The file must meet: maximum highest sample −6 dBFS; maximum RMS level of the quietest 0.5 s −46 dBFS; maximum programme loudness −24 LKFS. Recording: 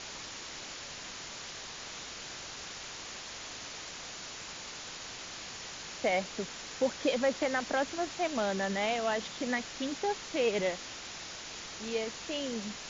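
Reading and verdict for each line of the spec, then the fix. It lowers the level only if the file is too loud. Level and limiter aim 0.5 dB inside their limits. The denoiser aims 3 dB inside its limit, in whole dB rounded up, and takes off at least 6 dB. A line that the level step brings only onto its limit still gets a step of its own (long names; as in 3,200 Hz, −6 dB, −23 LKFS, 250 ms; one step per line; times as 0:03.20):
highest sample −17.0 dBFS: in spec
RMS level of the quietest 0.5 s −44 dBFS: out of spec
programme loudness −35.0 LKFS: in spec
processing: broadband denoise 6 dB, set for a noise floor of −44 dBFS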